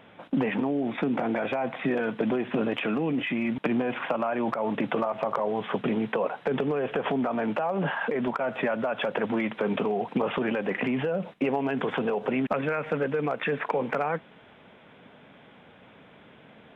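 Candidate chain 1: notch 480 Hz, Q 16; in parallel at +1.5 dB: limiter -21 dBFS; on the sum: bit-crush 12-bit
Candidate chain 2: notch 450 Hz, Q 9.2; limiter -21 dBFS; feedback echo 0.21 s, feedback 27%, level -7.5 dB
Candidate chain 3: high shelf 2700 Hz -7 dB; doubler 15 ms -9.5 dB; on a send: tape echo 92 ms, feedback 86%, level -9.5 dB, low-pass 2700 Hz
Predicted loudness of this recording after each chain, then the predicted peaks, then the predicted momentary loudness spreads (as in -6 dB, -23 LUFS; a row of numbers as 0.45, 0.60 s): -23.0, -30.0, -27.5 LUFS; -9.5, -18.0, -13.0 dBFS; 2, 3, 3 LU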